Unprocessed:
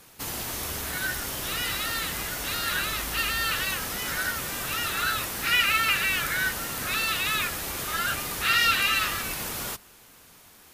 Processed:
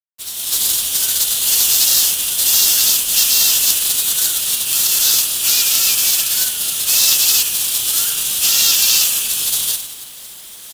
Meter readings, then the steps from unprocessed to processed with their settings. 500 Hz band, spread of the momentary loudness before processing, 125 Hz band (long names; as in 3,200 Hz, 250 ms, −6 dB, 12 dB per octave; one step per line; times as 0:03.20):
−1.0 dB, 10 LU, can't be measured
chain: loose part that buzzes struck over −45 dBFS, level −35 dBFS
echo with shifted repeats 94 ms, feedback 60%, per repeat −56 Hz, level −10.5 dB
flanger 0.48 Hz, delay 5.8 ms, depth 5 ms, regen −58%
parametric band 9,800 Hz −3.5 dB 0.32 octaves
in parallel at +2.5 dB: downward compressor 12 to 1, threshold −35 dBFS, peak gain reduction 14.5 dB
on the sum: inverse Chebyshev high-pass filter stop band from 2,200 Hz, stop band 40 dB
high-shelf EQ 6,100 Hz −10.5 dB
automatic gain control gain up to 14 dB
gate on every frequency bin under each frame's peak −10 dB weak
log-companded quantiser 4 bits
boost into a limiter +18 dB
level −1 dB